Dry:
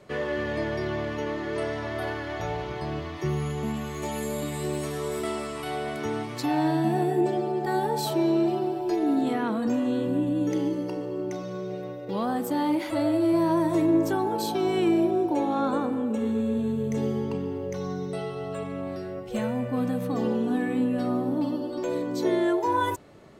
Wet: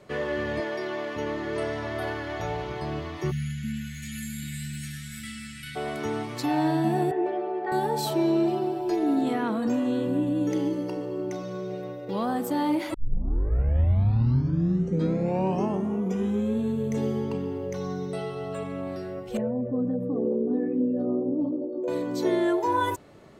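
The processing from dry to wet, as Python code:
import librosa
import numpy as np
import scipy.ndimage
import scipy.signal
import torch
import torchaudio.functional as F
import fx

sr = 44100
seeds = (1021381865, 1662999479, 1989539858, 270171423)

y = fx.highpass(x, sr, hz=320.0, slope=12, at=(0.6, 1.16))
y = fx.cheby1_bandstop(y, sr, low_hz=250.0, high_hz=1500.0, order=5, at=(3.3, 5.75), fade=0.02)
y = fx.cheby1_bandpass(y, sr, low_hz=420.0, high_hz=2200.0, order=2, at=(7.11, 7.72))
y = fx.envelope_sharpen(y, sr, power=2.0, at=(19.37, 21.88))
y = fx.edit(y, sr, fx.tape_start(start_s=12.94, length_s=3.67), tone=tone)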